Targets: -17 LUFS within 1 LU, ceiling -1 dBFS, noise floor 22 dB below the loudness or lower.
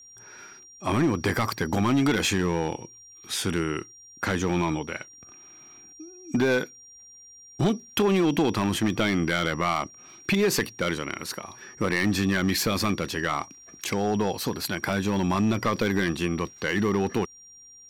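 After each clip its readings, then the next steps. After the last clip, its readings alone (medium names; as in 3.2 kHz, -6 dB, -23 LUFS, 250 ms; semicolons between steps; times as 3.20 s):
clipped samples 1.4%; clipping level -17.0 dBFS; steady tone 5.7 kHz; tone level -47 dBFS; loudness -26.0 LUFS; peak level -17.0 dBFS; loudness target -17.0 LUFS
-> clip repair -17 dBFS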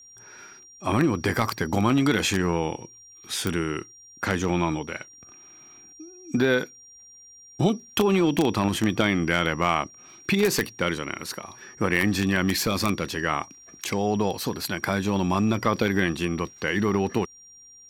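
clipped samples 0.0%; steady tone 5.7 kHz; tone level -47 dBFS
-> band-stop 5.7 kHz, Q 30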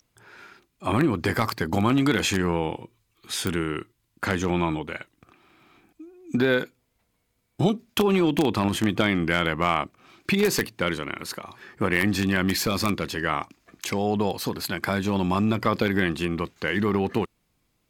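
steady tone not found; loudness -25.0 LUFS; peak level -8.0 dBFS; loudness target -17.0 LUFS
-> trim +8 dB; peak limiter -1 dBFS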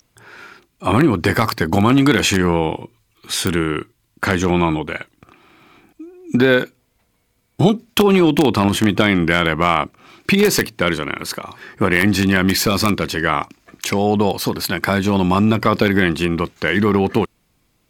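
loudness -17.0 LUFS; peak level -1.0 dBFS; noise floor -65 dBFS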